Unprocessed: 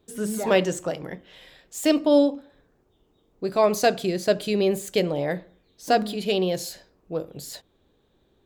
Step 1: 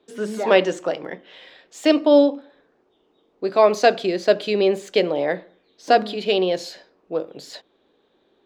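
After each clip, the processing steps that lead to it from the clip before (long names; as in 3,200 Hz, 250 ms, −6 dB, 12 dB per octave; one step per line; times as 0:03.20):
three-way crossover with the lows and the highs turned down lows −22 dB, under 230 Hz, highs −21 dB, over 5,400 Hz
level +5 dB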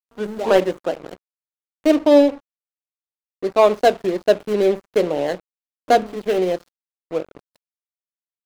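running median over 25 samples
dead-zone distortion −37 dBFS
level +2.5 dB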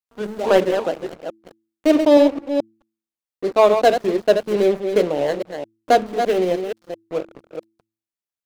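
delay that plays each chunk backwards 217 ms, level −7 dB
hum removal 110.3 Hz, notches 3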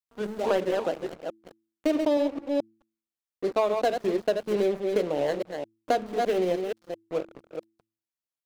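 downward compressor 6 to 1, threshold −16 dBFS, peak gain reduction 9 dB
level −4.5 dB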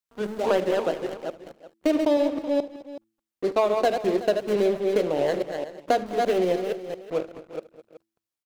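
multi-tap delay 75/206/219/375 ms −19/−17.5/−19.5/−15 dB
level +2.5 dB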